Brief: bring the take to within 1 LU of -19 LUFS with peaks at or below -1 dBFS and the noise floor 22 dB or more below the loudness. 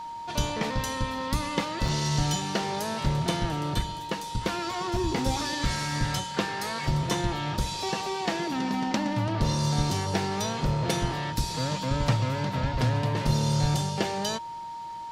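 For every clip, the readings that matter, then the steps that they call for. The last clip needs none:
dropouts 1; longest dropout 3.9 ms; steady tone 930 Hz; tone level -35 dBFS; loudness -28.5 LUFS; peak -9.0 dBFS; loudness target -19.0 LUFS
-> interpolate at 1.88, 3.9 ms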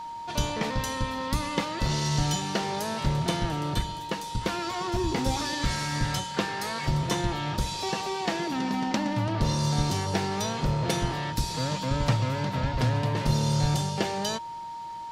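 dropouts 0; steady tone 930 Hz; tone level -35 dBFS
-> notch 930 Hz, Q 30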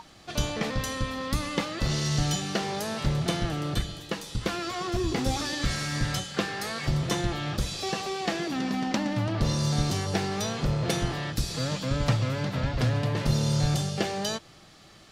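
steady tone none; loudness -29.0 LUFS; peak -9.0 dBFS; loudness target -19.0 LUFS
-> gain +10 dB; limiter -1 dBFS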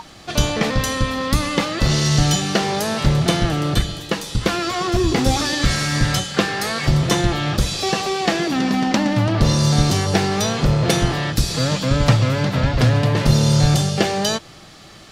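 loudness -19.0 LUFS; peak -1.0 dBFS; noise floor -43 dBFS

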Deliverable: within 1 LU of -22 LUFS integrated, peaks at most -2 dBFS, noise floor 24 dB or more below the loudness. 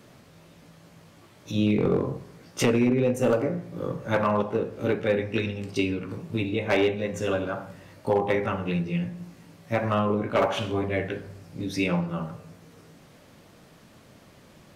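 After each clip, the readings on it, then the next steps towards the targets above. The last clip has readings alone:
clipped 0.4%; flat tops at -15.0 dBFS; loudness -26.5 LUFS; peak -15.0 dBFS; loudness target -22.0 LUFS
-> clip repair -15 dBFS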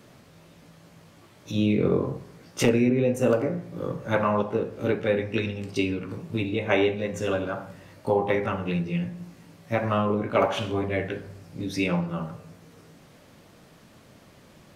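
clipped 0.0%; loudness -26.5 LUFS; peak -8.0 dBFS; loudness target -22.0 LUFS
-> gain +4.5 dB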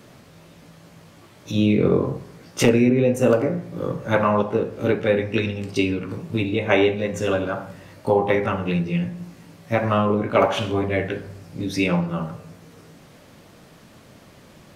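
loudness -22.0 LUFS; peak -3.5 dBFS; noise floor -49 dBFS

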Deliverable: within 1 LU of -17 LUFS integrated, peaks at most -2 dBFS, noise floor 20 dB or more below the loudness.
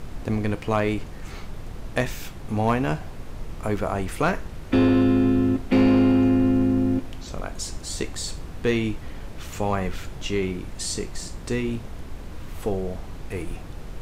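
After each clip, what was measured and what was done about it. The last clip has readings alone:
clipped 0.4%; flat tops at -12.5 dBFS; noise floor -38 dBFS; noise floor target -45 dBFS; loudness -24.5 LUFS; peak -12.5 dBFS; loudness target -17.0 LUFS
-> clip repair -12.5 dBFS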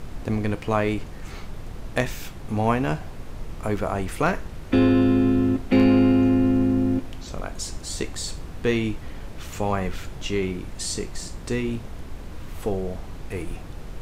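clipped 0.0%; noise floor -38 dBFS; noise floor target -44 dBFS
-> noise print and reduce 6 dB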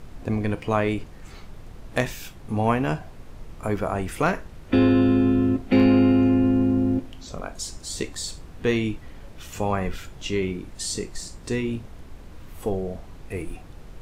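noise floor -43 dBFS; noise floor target -44 dBFS
-> noise print and reduce 6 dB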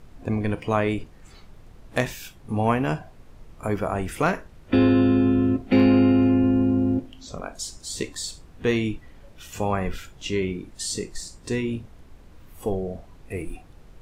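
noise floor -49 dBFS; loudness -24.0 LUFS; peak -7.5 dBFS; loudness target -17.0 LUFS
-> gain +7 dB; limiter -2 dBFS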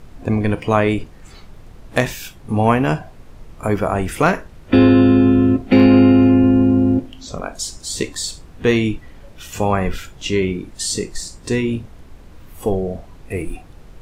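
loudness -17.0 LUFS; peak -2.0 dBFS; noise floor -42 dBFS

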